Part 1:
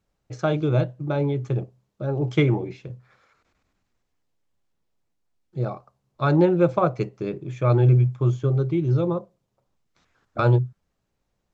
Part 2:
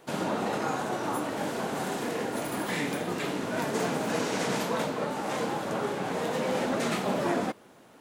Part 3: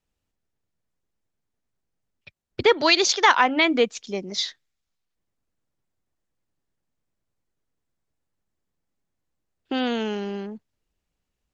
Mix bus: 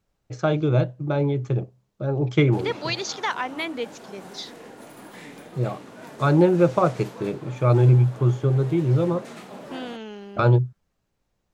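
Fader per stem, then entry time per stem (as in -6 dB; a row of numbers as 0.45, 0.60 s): +1.0, -11.5, -10.0 dB; 0.00, 2.45, 0.00 s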